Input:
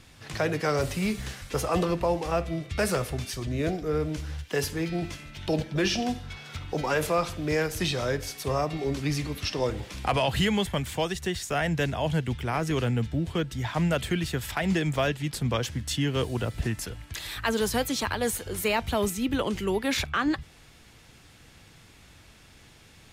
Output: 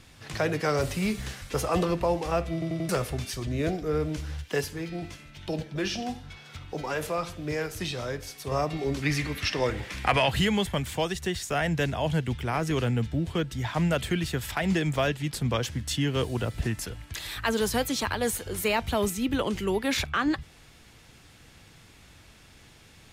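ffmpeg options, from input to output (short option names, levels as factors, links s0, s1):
-filter_complex "[0:a]asettb=1/sr,asplit=3[s0][s1][s2];[s0]atrim=end=4.614[s3];[s1]atrim=start=4.61:end=8.52,asetpts=PTS-STARTPTS,afade=t=in:d=0.004:c=qsin,afade=t=out:st=3.906:d=0.004:c=qsin,flanger=delay=5.6:depth=4.5:regen=81:speed=1.1:shape=sinusoidal[s4];[s2]atrim=start=8.516[s5];[s3][s4]acrossfade=d=0.004:c1=hsin:c2=qsin[s6];[s6][s5]acrossfade=d=0.004:c1=qsin:c2=hsin,asettb=1/sr,asplit=3[s7][s8][s9];[s7]atrim=end=9.024[s10];[s8]atrim=start=9.02:end=10.31,asetpts=PTS-STARTPTS,afade=t=in:d=0.004:c=qsin,afade=t=out:st=1.286:d=0.004:c=qsin,equalizer=f=1900:w=1.4:g=9.5[s11];[s9]atrim=start=10.306[s12];[s10][s11]acrossfade=d=0.004:c1=hsin:c2=qsin[s13];[s13][s12]acrossfade=d=0.004:c1=qsin:c2=hsin,asplit=5[s14][s15][s16][s17][s18];[s14]atrim=end=2.622[s19];[s15]atrim=start=2.528:end=2.622[s20];[s16]atrim=start=2.528:end=2.622[s21];[s17]atrim=start=2.528:end=2.622[s22];[s18]atrim=start=2.888[s23];[s19][s20]acrossfade=d=0.004:c1=hsin:c2=hsin[s24];[s24][s21]acrossfade=d=0.004:c1=hsin:c2=hsin[s25];[s25][s22]acrossfade=d=0.004:c1=hsin:c2=hsin[s26];[s26][s23]acrossfade=d=0.004:c1=hsin:c2=hsin"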